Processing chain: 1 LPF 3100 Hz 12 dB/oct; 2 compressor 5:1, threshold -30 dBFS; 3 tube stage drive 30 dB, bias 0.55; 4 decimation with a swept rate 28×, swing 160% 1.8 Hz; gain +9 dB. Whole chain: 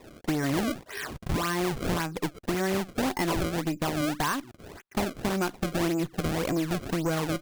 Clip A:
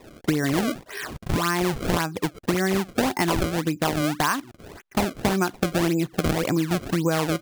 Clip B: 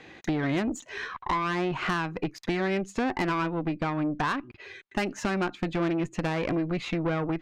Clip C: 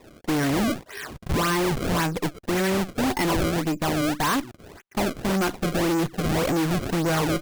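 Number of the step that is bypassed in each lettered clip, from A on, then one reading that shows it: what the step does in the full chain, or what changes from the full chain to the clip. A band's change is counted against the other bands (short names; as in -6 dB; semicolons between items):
3, crest factor change +3.5 dB; 4, 8 kHz band -8.5 dB; 2, mean gain reduction 9.5 dB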